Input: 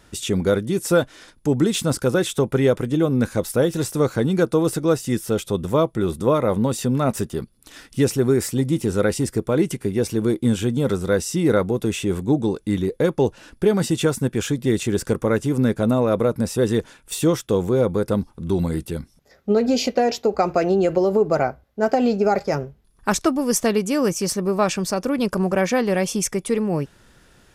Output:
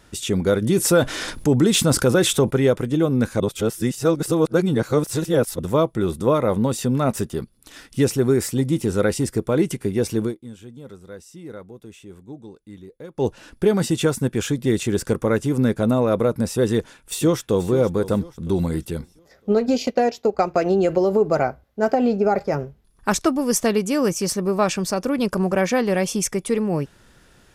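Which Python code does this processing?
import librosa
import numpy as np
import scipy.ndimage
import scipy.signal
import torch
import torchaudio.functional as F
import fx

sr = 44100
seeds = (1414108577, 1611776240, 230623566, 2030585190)

y = fx.env_flatten(x, sr, amount_pct=50, at=(0.61, 2.49), fade=0.02)
y = fx.echo_throw(y, sr, start_s=16.73, length_s=0.95, ms=480, feedback_pct=40, wet_db=-14.5)
y = fx.transient(y, sr, attack_db=0, sustain_db=-9, at=(19.52, 20.66))
y = fx.peak_eq(y, sr, hz=6400.0, db=-7.5, octaves=2.4, at=(21.92, 22.59))
y = fx.edit(y, sr, fx.reverse_span(start_s=3.4, length_s=2.19),
    fx.fade_down_up(start_s=10.22, length_s=3.05, db=-19.0, fade_s=0.13), tone=tone)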